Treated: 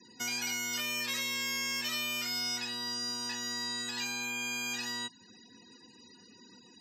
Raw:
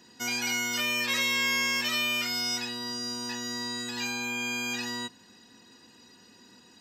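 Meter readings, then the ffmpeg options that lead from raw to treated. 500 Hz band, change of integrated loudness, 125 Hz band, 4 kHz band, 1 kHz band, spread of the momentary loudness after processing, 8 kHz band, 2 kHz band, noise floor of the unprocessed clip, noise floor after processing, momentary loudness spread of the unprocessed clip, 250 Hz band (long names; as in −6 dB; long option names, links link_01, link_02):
−7.5 dB, −5.0 dB, −6.5 dB, −4.0 dB, −6.0 dB, 3 LU, −2.0 dB, −6.5 dB, −57 dBFS, −58 dBFS, 8 LU, −7.0 dB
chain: -filter_complex "[0:a]acrossover=split=250|720|1700|4200[link_01][link_02][link_03][link_04][link_05];[link_01]acompressor=threshold=-51dB:ratio=4[link_06];[link_02]acompressor=threshold=-52dB:ratio=4[link_07];[link_03]acompressor=threshold=-46dB:ratio=4[link_08];[link_04]acompressor=threshold=-40dB:ratio=4[link_09];[link_05]acompressor=threshold=-36dB:ratio=4[link_10];[link_06][link_07][link_08][link_09][link_10]amix=inputs=5:normalize=0,afftfilt=real='re*gte(hypot(re,im),0.00224)':imag='im*gte(hypot(re,im),0.00224)':win_size=1024:overlap=0.75"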